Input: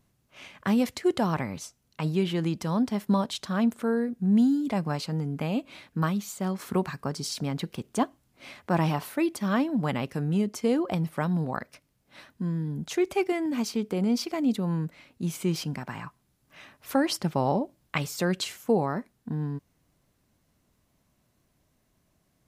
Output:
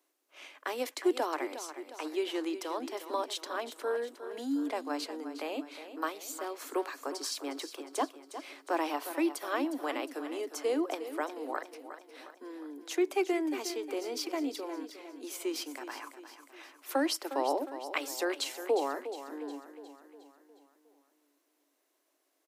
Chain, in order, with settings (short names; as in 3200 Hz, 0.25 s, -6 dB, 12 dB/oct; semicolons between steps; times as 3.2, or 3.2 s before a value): steep high-pass 280 Hz 96 dB/oct; high shelf 10000 Hz +3.5 dB; feedback echo 0.359 s, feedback 52%, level -11.5 dB; gain -3.5 dB